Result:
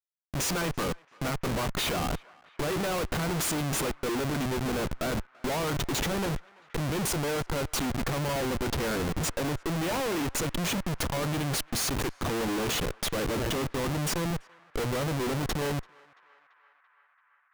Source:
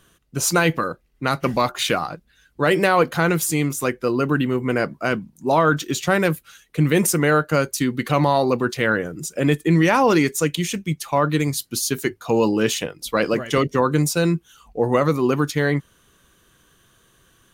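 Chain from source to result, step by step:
0:09.60–0:10.32: mains-hum notches 50/100/150/200/250/300 Hz
downward compressor 5 to 1, threshold −24 dBFS, peak gain reduction 11.5 dB
comparator with hysteresis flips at −33 dBFS
feedback echo with a band-pass in the loop 337 ms, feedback 84%, band-pass 1,500 Hz, level −23 dB

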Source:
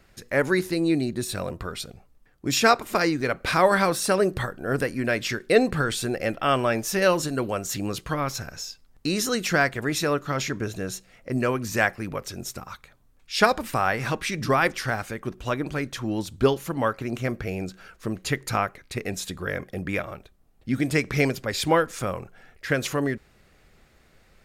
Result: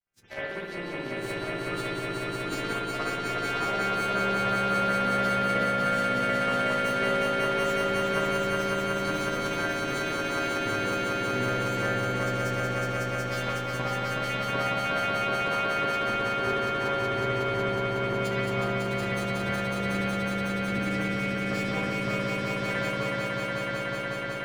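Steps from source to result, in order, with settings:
every partial snapped to a pitch grid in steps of 2 semitones
noise gate with hold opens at −46 dBFS
low-pass filter 3,100 Hz 6 dB per octave
downward compressor 10 to 1, threshold −30 dBFS, peak gain reduction 17.5 dB
power curve on the samples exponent 2
pitch-shifted copies added +5 semitones −16 dB
on a send: echo that builds up and dies away 184 ms, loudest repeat 5, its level −3.5 dB
on the sum: spring reverb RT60 1 s, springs 56 ms, chirp 75 ms, DRR −9.5 dB
level −3 dB

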